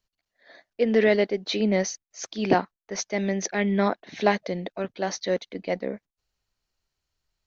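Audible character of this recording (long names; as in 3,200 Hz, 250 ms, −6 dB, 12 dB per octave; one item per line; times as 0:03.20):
background noise floor −87 dBFS
spectral slope −4.5 dB per octave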